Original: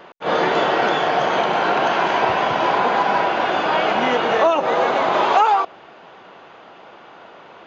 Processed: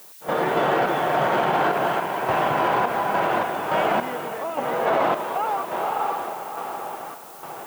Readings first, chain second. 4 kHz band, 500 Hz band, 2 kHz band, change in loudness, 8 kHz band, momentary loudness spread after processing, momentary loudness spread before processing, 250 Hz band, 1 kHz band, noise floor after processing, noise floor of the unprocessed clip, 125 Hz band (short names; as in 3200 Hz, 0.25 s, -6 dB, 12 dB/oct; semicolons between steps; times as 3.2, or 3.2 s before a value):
-9.0 dB, -4.0 dB, -5.5 dB, -5.5 dB, n/a, 11 LU, 3 LU, -3.0 dB, -4.5 dB, -41 dBFS, -44 dBFS, +0.5 dB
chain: median filter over 9 samples; on a send: diffused feedback echo 0.525 s, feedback 45%, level -6 dB; on the sum: random-step tremolo, depth 85%; added noise violet -38 dBFS; bell 140 Hz +6 dB 0.4 oct; limiter -13.5 dBFS, peak gain reduction 8 dB; high shelf 4400 Hz -11 dB; gain +2.5 dB